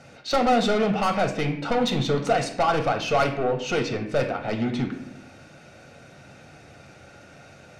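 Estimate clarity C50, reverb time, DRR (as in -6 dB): 9.0 dB, 0.75 s, 3.5 dB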